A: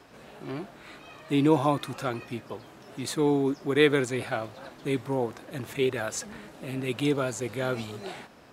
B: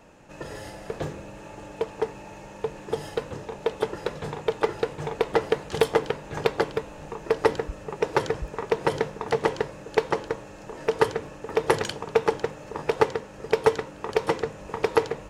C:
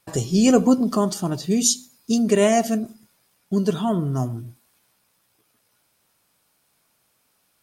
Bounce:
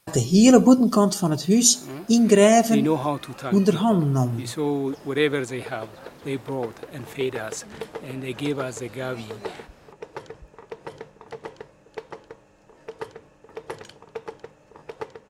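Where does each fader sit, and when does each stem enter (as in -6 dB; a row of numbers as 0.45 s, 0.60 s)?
-0.5 dB, -13.5 dB, +2.5 dB; 1.40 s, 2.00 s, 0.00 s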